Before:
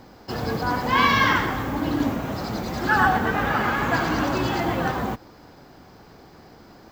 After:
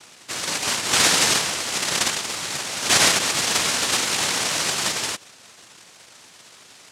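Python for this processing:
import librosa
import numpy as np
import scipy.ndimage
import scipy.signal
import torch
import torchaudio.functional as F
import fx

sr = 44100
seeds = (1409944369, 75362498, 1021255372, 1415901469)

y = fx.small_body(x, sr, hz=(850.0, 2300.0, 3900.0), ring_ms=45, db=6)
y = fx.noise_vocoder(y, sr, seeds[0], bands=1)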